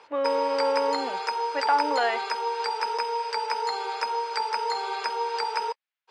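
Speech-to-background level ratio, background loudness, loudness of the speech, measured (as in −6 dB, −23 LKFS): 1.0 dB, −28.5 LKFS, −27.5 LKFS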